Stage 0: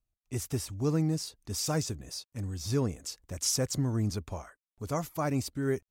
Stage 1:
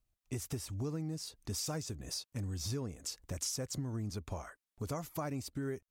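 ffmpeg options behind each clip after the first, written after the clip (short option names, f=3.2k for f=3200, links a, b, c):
-af "acompressor=threshold=-39dB:ratio=6,volume=3dB"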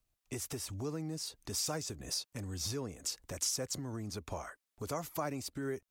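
-filter_complex "[0:a]lowshelf=f=190:g=-5.5,acrossover=split=310|650|2200[a][b][c][d];[a]alimiter=level_in=16.5dB:limit=-24dB:level=0:latency=1:release=160,volume=-16.5dB[e];[e][b][c][d]amix=inputs=4:normalize=0,volume=3.5dB"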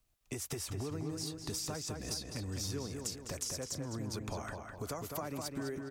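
-filter_complex "[0:a]acompressor=threshold=-41dB:ratio=6,asplit=2[a][b];[b]adelay=206,lowpass=f=3.6k:p=1,volume=-4dB,asplit=2[c][d];[d]adelay=206,lowpass=f=3.6k:p=1,volume=0.47,asplit=2[e][f];[f]adelay=206,lowpass=f=3.6k:p=1,volume=0.47,asplit=2[g][h];[h]adelay=206,lowpass=f=3.6k:p=1,volume=0.47,asplit=2[i][j];[j]adelay=206,lowpass=f=3.6k:p=1,volume=0.47,asplit=2[k][l];[l]adelay=206,lowpass=f=3.6k:p=1,volume=0.47[m];[c][e][g][i][k][m]amix=inputs=6:normalize=0[n];[a][n]amix=inputs=2:normalize=0,volume=4dB"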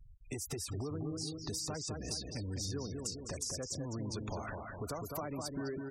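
-af "aeval=exprs='val(0)+0.5*0.00562*sgn(val(0))':c=same,afftfilt=real='re*gte(hypot(re,im),0.00794)':imag='im*gte(hypot(re,im),0.00794)':win_size=1024:overlap=0.75,volume=-1.5dB"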